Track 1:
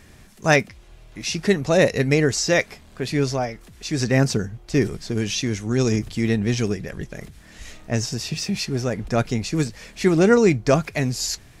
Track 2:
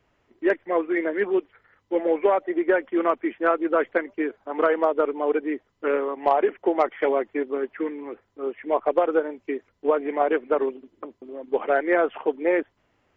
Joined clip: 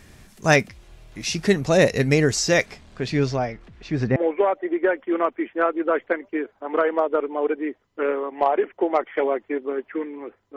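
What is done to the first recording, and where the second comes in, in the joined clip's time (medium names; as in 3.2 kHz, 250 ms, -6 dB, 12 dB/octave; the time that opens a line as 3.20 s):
track 1
2.65–4.16 s: low-pass 8.9 kHz -> 1.7 kHz
4.16 s: go over to track 2 from 2.01 s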